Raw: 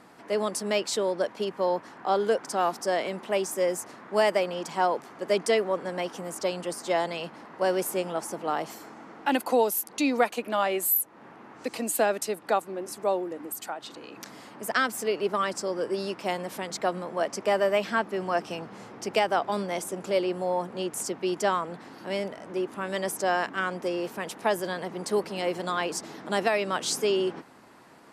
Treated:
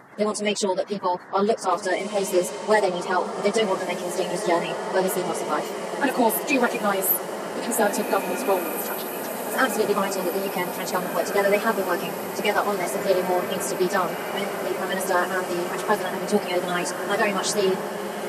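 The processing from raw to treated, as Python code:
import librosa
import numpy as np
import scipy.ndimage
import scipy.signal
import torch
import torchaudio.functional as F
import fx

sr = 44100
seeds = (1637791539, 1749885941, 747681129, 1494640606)

y = fx.spec_quant(x, sr, step_db=30)
y = fx.stretch_vocoder_free(y, sr, factor=0.65)
y = fx.echo_diffused(y, sr, ms=1846, feedback_pct=72, wet_db=-7.5)
y = F.gain(torch.from_numpy(y), 7.5).numpy()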